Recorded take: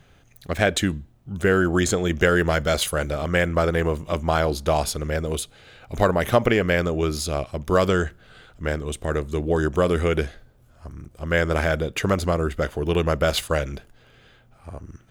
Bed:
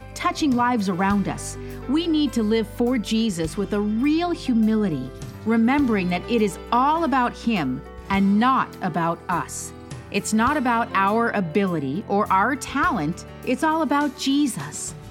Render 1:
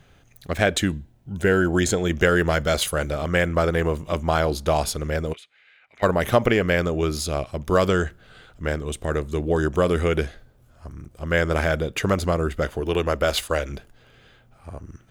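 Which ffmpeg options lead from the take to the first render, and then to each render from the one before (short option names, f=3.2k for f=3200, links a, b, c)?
-filter_complex "[0:a]asettb=1/sr,asplit=3[a][b][c];[a]atrim=end=0.904[d];[b]atrim=start=0.9:end=2.01,asetpts=PTS-STARTPTS,afade=t=in:d=0.004:c=qsin,afade=t=out:st=1.106:d=0.004:c=qsin,asuperstop=centerf=1200:order=4:qfactor=6.1[e];[c]atrim=start=2.006[f];[d][e]acrossfade=d=0.004:c1=hsin:c2=qsin[g];[g][f]acrossfade=d=0.004:c1=qsin:c2=hsin,asplit=3[h][i][j];[h]afade=t=out:st=5.32:d=0.02[k];[i]bandpass=f=2.1k:t=q:w=3.3,afade=t=in:st=5.32:d=0.02,afade=t=out:st=6.02:d=0.02[l];[j]afade=t=in:st=6.02:d=0.02[m];[k][l][m]amix=inputs=3:normalize=0,asettb=1/sr,asplit=3[n][o][p];[n]atrim=end=12.804[q];[o]atrim=start=12.8:end=13.7,asetpts=PTS-STARTPTS,afade=t=in:d=0.004:c=qsin,afade=t=out:st=0.896:d=0.004:c=qsin,equalizer=f=130:t=o:w=0.77:g=-11.5[r];[p]atrim=start=13.696[s];[q][r]acrossfade=d=0.004:c1=hsin:c2=qsin[t];[t][s]acrossfade=d=0.004:c1=qsin:c2=hsin"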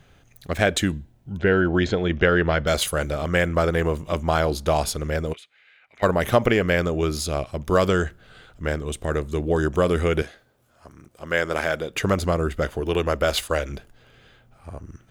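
-filter_complex "[0:a]asettb=1/sr,asplit=3[a][b][c];[a]atrim=end=1.374[d];[b]atrim=start=1.37:end=2.67,asetpts=PTS-STARTPTS,afade=t=in:d=0.004:c=qsin,afade=t=out:st=1.296:d=0.004:c=qsin,lowpass=f=4.2k:w=0.5412,lowpass=f=4.2k:w=1.3066[e];[c]atrim=start=2.666[f];[d][e]acrossfade=d=0.004:c1=hsin:c2=qsin[g];[g][f]acrossfade=d=0.004:c1=qsin:c2=hsin,asettb=1/sr,asplit=3[h][i][j];[h]atrim=end=10.224[k];[i]atrim=start=10.22:end=11.93,asetpts=PTS-STARTPTS,afade=t=in:d=0.004:c=qsin,afade=t=out:st=1.706:d=0.004:c=qsin,highpass=f=380:p=1[l];[j]atrim=start=11.926[m];[k][l]acrossfade=d=0.004:c1=hsin:c2=qsin[n];[n][m]acrossfade=d=0.004:c1=qsin:c2=hsin"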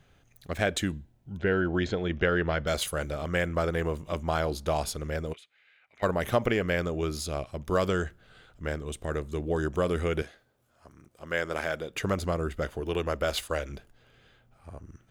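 -af "volume=-7dB"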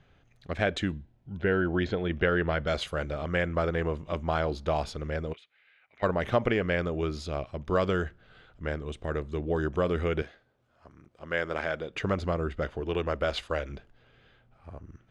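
-af "lowpass=3.9k"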